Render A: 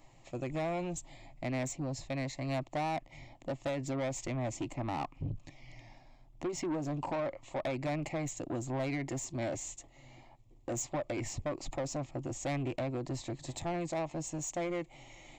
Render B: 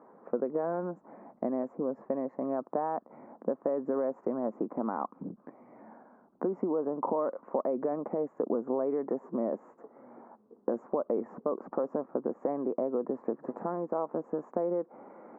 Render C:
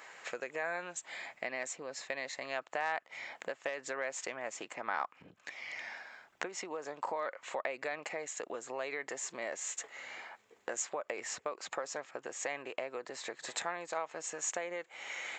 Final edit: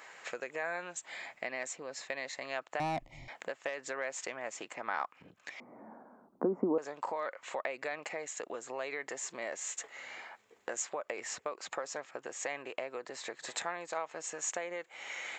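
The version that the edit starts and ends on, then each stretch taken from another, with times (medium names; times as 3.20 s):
C
2.80–3.28 s: from A
5.60–6.78 s: from B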